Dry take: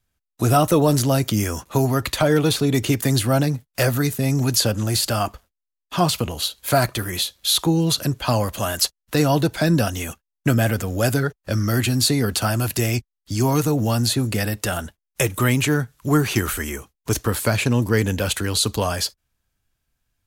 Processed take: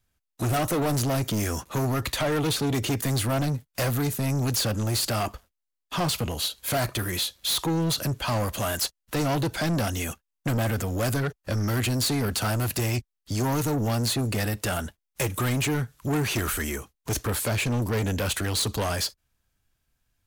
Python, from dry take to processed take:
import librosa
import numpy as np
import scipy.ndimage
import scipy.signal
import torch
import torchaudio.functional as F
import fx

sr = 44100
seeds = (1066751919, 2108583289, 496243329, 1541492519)

y = 10.0 ** (-22.0 / 20.0) * np.tanh(x / 10.0 ** (-22.0 / 20.0))